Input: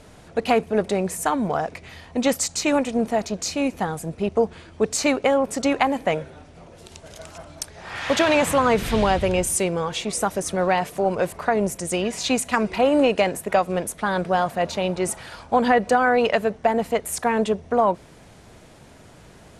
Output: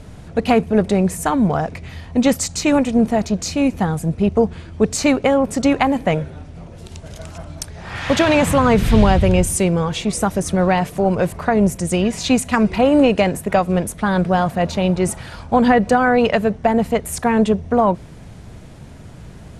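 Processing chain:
bass and treble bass +11 dB, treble −1 dB
level +2.5 dB

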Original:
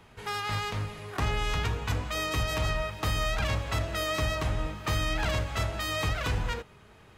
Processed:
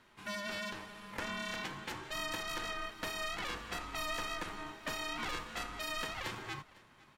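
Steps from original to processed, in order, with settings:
high-pass filter 230 Hz 24 dB per octave
ring modulation 610 Hz
single-tap delay 504 ms −22 dB
level −4 dB

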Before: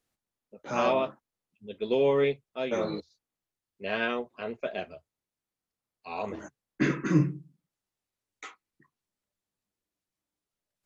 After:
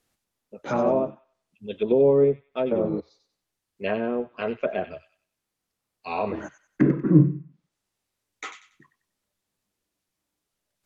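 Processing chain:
treble cut that deepens with the level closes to 560 Hz, closed at −26.5 dBFS
delay with a high-pass on its return 94 ms, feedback 31%, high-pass 2,100 Hz, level −7.5 dB
level +7.5 dB

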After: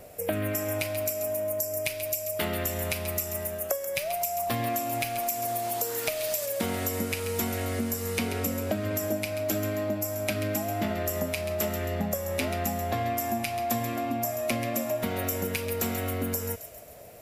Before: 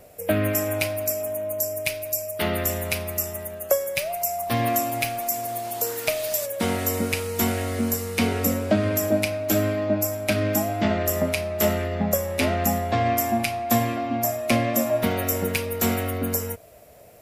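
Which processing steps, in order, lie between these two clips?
downward compressor, threshold −28 dBFS, peak gain reduction 12.5 dB
on a send: delay with a high-pass on its return 135 ms, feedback 52%, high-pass 2,200 Hz, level −8.5 dB
on the sum: level +1.5 dB

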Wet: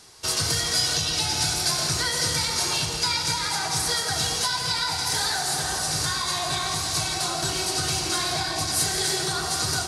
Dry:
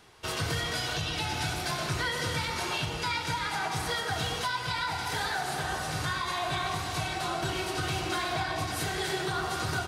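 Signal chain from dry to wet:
flat-topped bell 6,900 Hz +13 dB
echo with a time of its own for lows and highs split 820 Hz, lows 410 ms, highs 169 ms, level −11.5 dB
level +1.5 dB

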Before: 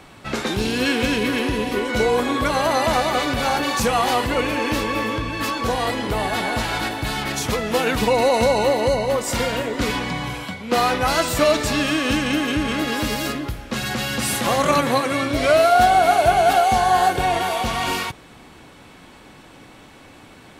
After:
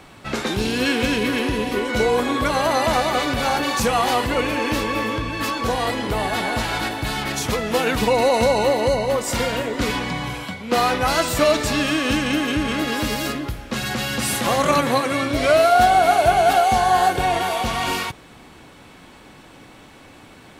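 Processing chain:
bit-depth reduction 12 bits, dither none

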